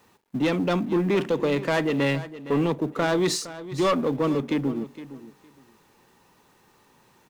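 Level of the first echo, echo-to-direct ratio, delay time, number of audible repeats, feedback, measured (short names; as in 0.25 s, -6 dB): -15.0 dB, -15.0 dB, 0.462 s, 2, 17%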